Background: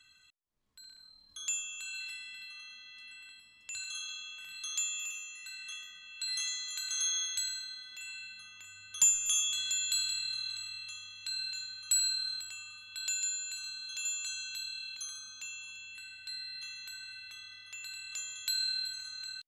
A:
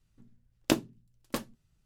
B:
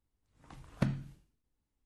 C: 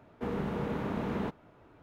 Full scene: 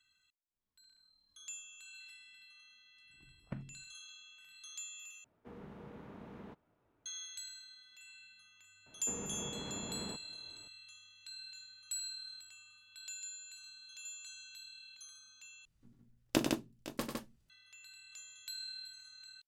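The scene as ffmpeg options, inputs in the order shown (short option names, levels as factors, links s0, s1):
-filter_complex "[3:a]asplit=2[s0][s1];[0:a]volume=0.251[s2];[2:a]afwtdn=0.00316[s3];[s1]alimiter=level_in=1.68:limit=0.0631:level=0:latency=1:release=135,volume=0.596[s4];[1:a]aecho=1:1:42|95|109|159|510|530:0.2|0.473|0.178|0.631|0.158|0.106[s5];[s2]asplit=3[s6][s7][s8];[s6]atrim=end=5.244[s9];[s0]atrim=end=1.82,asetpts=PTS-STARTPTS,volume=0.133[s10];[s7]atrim=start=7.056:end=15.654[s11];[s5]atrim=end=1.85,asetpts=PTS-STARTPTS,volume=0.531[s12];[s8]atrim=start=17.496[s13];[s3]atrim=end=1.85,asetpts=PTS-STARTPTS,volume=0.237,afade=t=in:d=0.004:c=hsin,afade=t=out:st=1.846:d=0.004:c=hsin,adelay=2700[s14];[s4]atrim=end=1.82,asetpts=PTS-STARTPTS,volume=0.422,afade=t=in:d=0.004:c=hsin,afade=t=out:st=1.816:d=0.004:c=hsin,adelay=8860[s15];[s9][s10]acrossfade=d=0.004:c1=hsin:c2=hsin[s16];[s16][s11]acrossfade=d=0.004:c1=hsin:c2=hsin[s17];[s17][s12]acrossfade=d=0.004:c1=hsin:c2=hsin[s18];[s18][s13]acrossfade=d=0.004:c1=hsin:c2=hsin[s19];[s19][s14][s15]amix=inputs=3:normalize=0"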